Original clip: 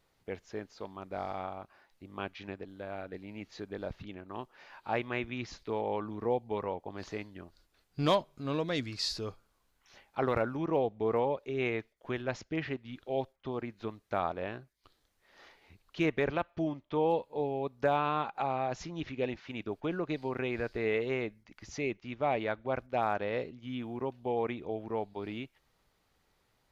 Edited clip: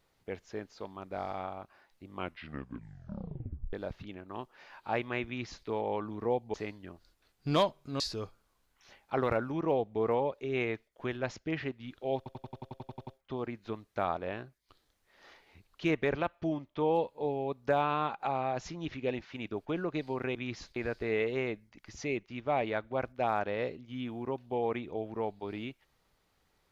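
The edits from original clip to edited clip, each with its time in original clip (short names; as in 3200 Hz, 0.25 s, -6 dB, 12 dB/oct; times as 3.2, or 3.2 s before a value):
2.12 tape stop 1.61 s
5.26–5.67 copy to 20.5
6.54–7.06 cut
8.52–9.05 cut
13.22 stutter 0.09 s, 11 plays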